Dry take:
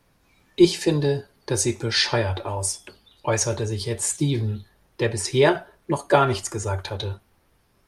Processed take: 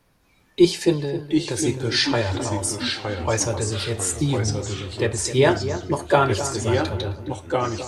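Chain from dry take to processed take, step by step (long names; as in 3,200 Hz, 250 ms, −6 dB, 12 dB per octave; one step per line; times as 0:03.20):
0:00.93–0:01.66: downward compressor, threshold −23 dBFS, peak gain reduction 6.5 dB
delay with pitch and tempo change per echo 653 ms, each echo −2 semitones, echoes 3, each echo −6 dB
feedback echo with a low-pass in the loop 262 ms, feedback 36%, low-pass 1,600 Hz, level −11 dB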